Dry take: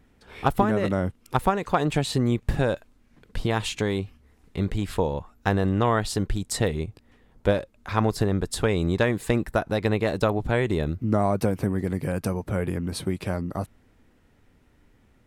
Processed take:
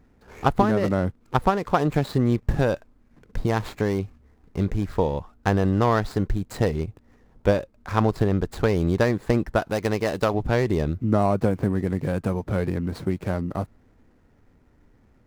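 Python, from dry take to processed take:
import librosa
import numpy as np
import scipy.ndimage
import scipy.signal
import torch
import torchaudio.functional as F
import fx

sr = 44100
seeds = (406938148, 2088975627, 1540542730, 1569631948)

y = scipy.ndimage.median_filter(x, 15, mode='constant')
y = fx.tilt_eq(y, sr, slope=1.5, at=(9.59, 10.34))
y = y * librosa.db_to_amplitude(2.0)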